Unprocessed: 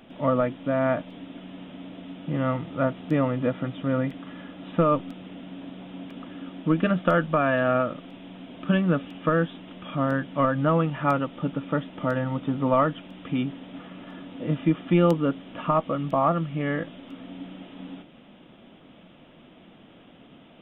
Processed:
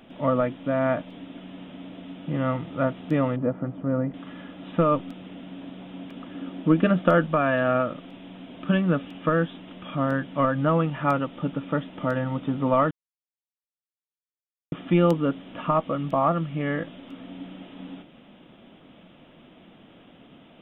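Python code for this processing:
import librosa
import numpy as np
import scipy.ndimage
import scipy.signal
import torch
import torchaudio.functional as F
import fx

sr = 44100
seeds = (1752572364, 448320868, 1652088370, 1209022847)

y = fx.lowpass(x, sr, hz=1100.0, slope=12, at=(3.36, 4.14))
y = fx.peak_eq(y, sr, hz=350.0, db=3.5, octaves=2.4, at=(6.34, 7.27))
y = fx.edit(y, sr, fx.silence(start_s=12.91, length_s=1.81), tone=tone)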